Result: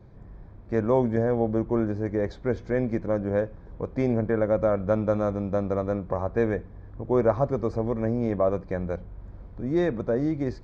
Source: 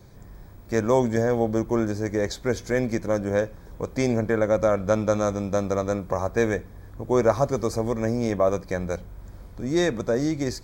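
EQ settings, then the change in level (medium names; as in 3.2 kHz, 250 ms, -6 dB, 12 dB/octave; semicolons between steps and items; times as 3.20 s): tape spacing loss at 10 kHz 36 dB; 0.0 dB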